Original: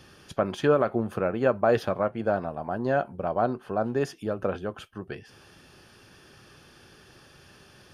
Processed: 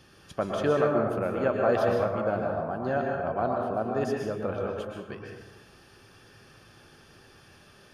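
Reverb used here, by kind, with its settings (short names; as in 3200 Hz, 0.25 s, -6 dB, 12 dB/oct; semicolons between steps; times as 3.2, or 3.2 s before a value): plate-style reverb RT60 1.1 s, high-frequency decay 0.5×, pre-delay 0.105 s, DRR -0.5 dB; gain -4 dB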